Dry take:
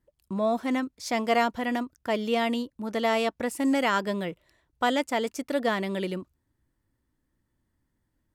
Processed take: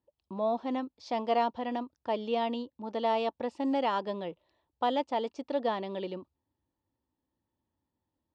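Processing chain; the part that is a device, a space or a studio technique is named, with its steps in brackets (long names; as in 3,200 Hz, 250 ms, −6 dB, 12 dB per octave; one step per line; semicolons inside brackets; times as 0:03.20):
guitar cabinet (loudspeaker in its box 85–4,500 Hz, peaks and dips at 130 Hz −7 dB, 190 Hz −4 dB, 530 Hz +3 dB, 860 Hz +8 dB, 1,500 Hz −9 dB, 2,100 Hz −9 dB)
level −5.5 dB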